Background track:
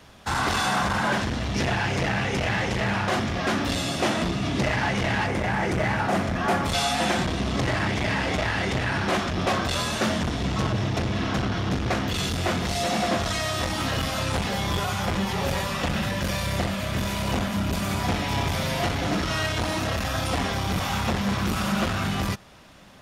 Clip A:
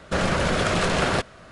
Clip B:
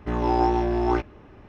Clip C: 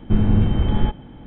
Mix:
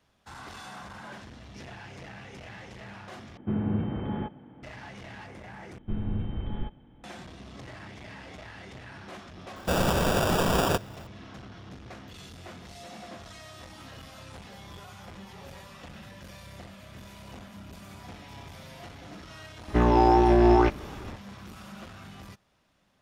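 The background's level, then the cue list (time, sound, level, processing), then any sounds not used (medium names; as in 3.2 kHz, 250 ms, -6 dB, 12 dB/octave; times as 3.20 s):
background track -19.5 dB
3.37 s: replace with C -7 dB + band-pass 140–2100 Hz
5.78 s: replace with C -14.5 dB
9.56 s: add A -2 dB + sample-and-hold 21×
19.68 s: add B -9.5 dB + loudness maximiser +16 dB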